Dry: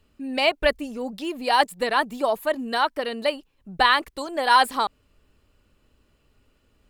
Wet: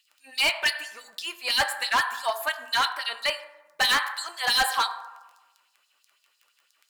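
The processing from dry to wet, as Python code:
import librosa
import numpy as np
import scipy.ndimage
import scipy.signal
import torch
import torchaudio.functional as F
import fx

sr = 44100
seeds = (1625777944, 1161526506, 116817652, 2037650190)

y = fx.tilt_shelf(x, sr, db=-4.5, hz=1200.0)
y = fx.dmg_crackle(y, sr, seeds[0], per_s=11.0, level_db=-40.0)
y = fx.filter_lfo_highpass(y, sr, shape='sine', hz=6.0, low_hz=820.0, high_hz=5100.0, q=1.6)
y = fx.rev_fdn(y, sr, rt60_s=1.1, lf_ratio=1.05, hf_ratio=0.45, size_ms=59.0, drr_db=8.0)
y = np.clip(y, -10.0 ** (-18.0 / 20.0), 10.0 ** (-18.0 / 20.0))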